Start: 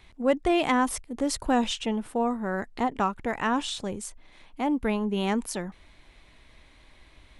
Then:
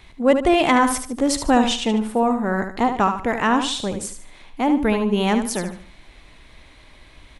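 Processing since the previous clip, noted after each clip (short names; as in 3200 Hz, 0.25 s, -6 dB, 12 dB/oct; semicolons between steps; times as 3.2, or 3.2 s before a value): feedback echo 74 ms, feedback 32%, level -8 dB; gain +7 dB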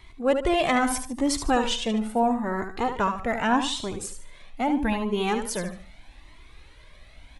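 cascading flanger rising 0.79 Hz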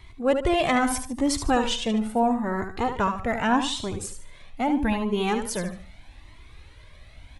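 bell 92 Hz +8 dB 1.2 oct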